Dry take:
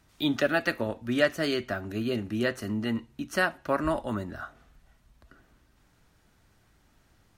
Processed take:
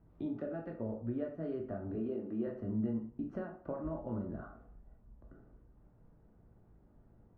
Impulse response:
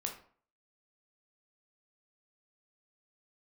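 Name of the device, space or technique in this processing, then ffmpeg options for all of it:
television next door: -filter_complex "[0:a]asettb=1/sr,asplit=3[a][b][c];[a]atrim=end=1.954[d];[b]atrim=start=1.95:end=2.47,asetpts=PTS-STARTPTS,afade=t=in:d=0.004:c=qsin,afade=t=out:st=0.516:d=0.004:c=qsin,highpass=310[e];[c]atrim=start=2.466[f];[d][e]acrossfade=d=0.004:c1=hsin:c2=qsin[g];[g][f]acrossfade=d=0.004:c1=qsin:c2=hsin,acompressor=threshold=-36dB:ratio=5,lowpass=580[h];[1:a]atrim=start_sample=2205[i];[h][i]afir=irnorm=-1:irlink=0,volume=2dB"

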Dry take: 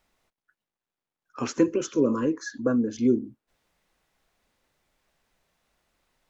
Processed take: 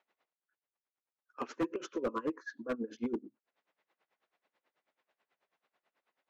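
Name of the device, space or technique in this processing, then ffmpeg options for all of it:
helicopter radio: -af "highpass=370,lowpass=2.9k,aeval=exprs='val(0)*pow(10,-21*(0.5-0.5*cos(2*PI*9.2*n/s))/20)':c=same,asoftclip=type=hard:threshold=-27.5dB"

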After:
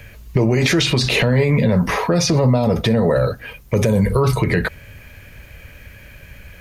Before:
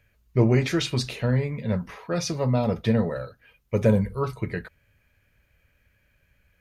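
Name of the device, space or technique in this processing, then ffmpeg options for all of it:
mastering chain: -filter_complex "[0:a]equalizer=f=1.4k:t=o:w=0.4:g=-3.5,acrossover=split=310|4800[a][b][c];[a]acompressor=threshold=-32dB:ratio=4[d];[b]acompressor=threshold=-32dB:ratio=4[e];[c]acompressor=threshold=-45dB:ratio=4[f];[d][e][f]amix=inputs=3:normalize=0,acompressor=threshold=-33dB:ratio=2.5,asoftclip=type=hard:threshold=-24dB,alimiter=level_in=31.5dB:limit=-1dB:release=50:level=0:latency=1,asettb=1/sr,asplit=3[g][h][i];[g]atrim=end=1.584[j];[h]atrim=start=1.58:end=3.75,asetpts=PTS-STARTPTS,afade=t=in:d=0.004:c=qsin,afade=t=out:st=2.166:d=0.004:c=qsin,equalizer=f=3k:t=o:w=1.4:g=-4[k];[i]atrim=start=3.746[l];[j][k]acrossfade=d=0.004:c1=hsin:c2=qsin[m];[m][l]acrossfade=d=0.004:c1=qsin:c2=hsin,volume=-6.5dB"

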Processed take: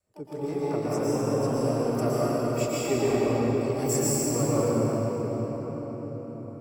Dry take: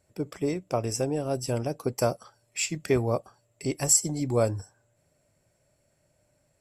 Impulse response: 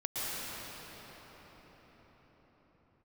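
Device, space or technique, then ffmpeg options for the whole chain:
shimmer-style reverb: -filter_complex "[0:a]adynamicequalizer=threshold=0.0126:dfrequency=250:dqfactor=0.94:tfrequency=250:tqfactor=0.94:attack=5:release=100:ratio=0.375:range=2.5:mode=boostabove:tftype=bell,asettb=1/sr,asplit=3[a][b][c];[a]atrim=end=1.934[d];[b]atrim=start=1.93:end=2.93,asetpts=PTS-STARTPTS,afade=t=in:d=0.004:c=qsin,afade=t=out:st=0.996:d=0.004:c=qsin,aecho=1:1:3.1:0.48,atrim=end_sample=44100[e];[c]atrim=start=2.926[f];[d][e]acrossfade=d=0.004:c1=hsin:c2=qsin[g];[g][f]acrossfade=d=0.004:c1=qsin:c2=hsin,asplit=2[h][i];[i]asetrate=88200,aresample=44100,atempo=0.5,volume=-10dB[j];[h][j]amix=inputs=2:normalize=0[k];[1:a]atrim=start_sample=2205[l];[k][l]afir=irnorm=-1:irlink=0,equalizer=f=430:t=o:w=0.37:g=4,volume=-8.5dB"

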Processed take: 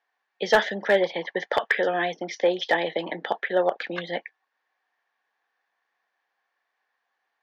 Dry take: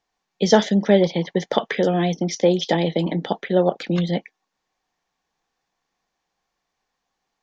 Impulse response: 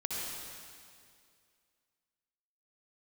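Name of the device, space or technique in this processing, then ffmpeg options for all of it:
megaphone: -af "highpass=550,lowpass=3.1k,equalizer=f=1.7k:t=o:w=0.4:g=9,asoftclip=type=hard:threshold=-11dB"

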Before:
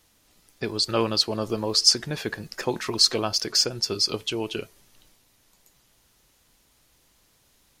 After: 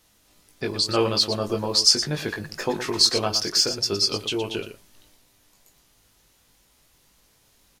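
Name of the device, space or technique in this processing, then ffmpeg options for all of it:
slapback doubling: -filter_complex "[0:a]asplit=3[a][b][c];[b]adelay=20,volume=-4dB[d];[c]adelay=117,volume=-10dB[e];[a][d][e]amix=inputs=3:normalize=0"

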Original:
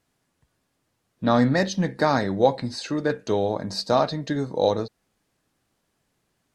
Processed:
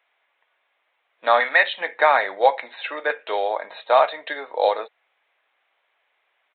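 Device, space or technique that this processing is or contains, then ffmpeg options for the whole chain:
musical greeting card: -filter_complex "[0:a]asettb=1/sr,asplit=3[a][b][c];[a]atrim=end=1.404[d];[b]atrim=start=1.4:end=1.81,asetpts=PTS-STARTPTS,afade=t=in:d=0.004:c=qsin,afade=t=out:st=0.406:d=0.004:c=qsin,tiltshelf=f=1.1k:g=-6[e];[c]atrim=start=1.806[f];[d][e]acrossfade=d=0.004:c1=hsin:c2=qsin[g];[g][f]acrossfade=d=0.004:c1=qsin:c2=hsin,aresample=8000,aresample=44100,highpass=f=600:w=0.5412,highpass=f=600:w=1.3066,equalizer=f=2.2k:t=o:w=0.4:g=8,volume=6.5dB"

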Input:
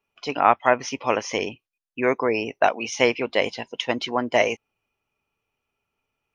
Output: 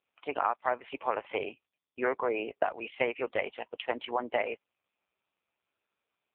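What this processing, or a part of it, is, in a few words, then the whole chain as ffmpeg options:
voicemail: -af "highpass=380,lowpass=2.7k,acompressor=threshold=-21dB:ratio=6,volume=-2.5dB" -ar 8000 -c:a libopencore_amrnb -b:a 5150

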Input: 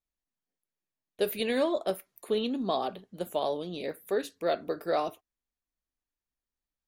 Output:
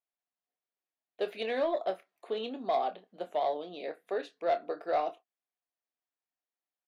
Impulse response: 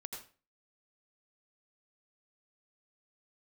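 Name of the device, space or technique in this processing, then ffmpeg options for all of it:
intercom: -filter_complex "[0:a]highpass=370,lowpass=3.5k,equalizer=f=710:t=o:w=0.26:g=8.5,asoftclip=type=tanh:threshold=-17.5dB,asplit=2[a][b];[b]adelay=27,volume=-11dB[c];[a][c]amix=inputs=2:normalize=0,volume=-2.5dB"

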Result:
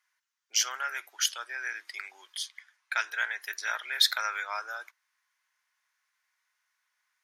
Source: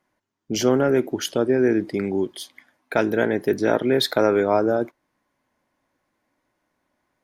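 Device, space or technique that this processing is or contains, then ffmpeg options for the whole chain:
headphones lying on a table: -filter_complex "[0:a]highpass=f=1.3k:w=0.5412,highpass=f=1.3k:w=1.3066,equalizer=f=5.9k:t=o:w=0.54:g=4,asettb=1/sr,asplit=3[a][b][c];[a]atrim=end=2.384[d];[b]atrim=start=2.38:end=3.42,asetpts=PTS-STARTPTS,afade=t=in:d=0.004:c=qsin,afade=t=out:st=1.036:d=0.004:c=qsin,lowpass=10k[e];[c]atrim=start=3.416[f];[d][e]acrossfade=d=0.004:c1=hsin:c2=qsin[g];[g][f]acrossfade=d=0.004:c1=qsin:c2=hsin"

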